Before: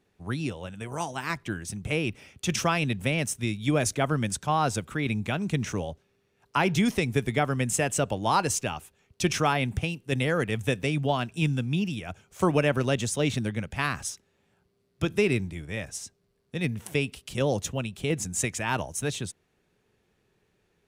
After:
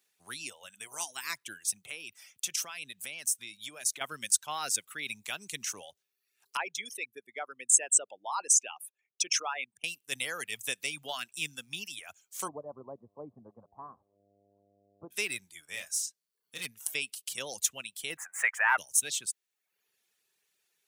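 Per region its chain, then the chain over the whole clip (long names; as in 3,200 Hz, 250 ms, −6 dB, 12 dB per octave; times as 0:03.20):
0:01.82–0:04.01: high-pass filter 77 Hz + downward compressor 3 to 1, threshold −32 dBFS
0:06.57–0:09.84: spectral envelope exaggerated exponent 2 + high-pass filter 430 Hz + one half of a high-frequency compander decoder only
0:12.47–0:15.10: Chebyshev low-pass filter 1,100 Hz, order 6 + hum with harmonics 100 Hz, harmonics 7, −45 dBFS −5 dB per octave
0:15.68–0:16.66: de-essing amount 65% + hard clipping −22.5 dBFS + double-tracking delay 34 ms −5 dB
0:18.17–0:18.78: high-pass filter 560 Hz + leveller curve on the samples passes 2 + drawn EQ curve 100 Hz 0 dB, 200 Hz −6 dB, 300 Hz −8 dB, 670 Hz +6 dB, 1,900 Hz +11 dB, 4,100 Hz −27 dB, 8,800 Hz −21 dB
whole clip: reverb reduction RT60 0.72 s; first difference; level +7 dB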